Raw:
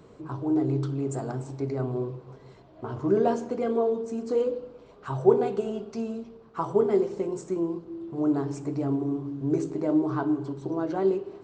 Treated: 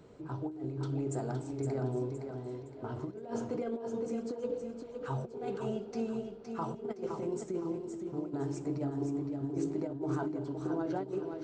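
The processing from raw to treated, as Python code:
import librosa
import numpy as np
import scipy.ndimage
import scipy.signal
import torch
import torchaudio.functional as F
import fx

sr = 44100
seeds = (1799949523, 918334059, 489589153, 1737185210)

y = fx.notch(x, sr, hz=1100.0, q=8.2)
y = fx.over_compress(y, sr, threshold_db=-28.0, ratio=-0.5)
y = fx.echo_feedback(y, sr, ms=515, feedback_pct=37, wet_db=-6.5)
y = y * 10.0 ** (-7.0 / 20.0)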